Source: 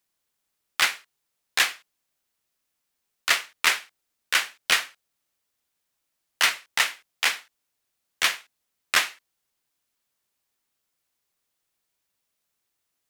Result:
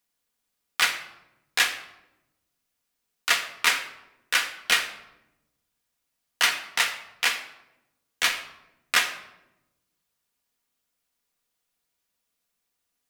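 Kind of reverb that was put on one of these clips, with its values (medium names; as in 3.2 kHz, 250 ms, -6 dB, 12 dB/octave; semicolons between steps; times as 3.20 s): simulated room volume 3700 m³, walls furnished, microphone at 1.8 m; trim -1.5 dB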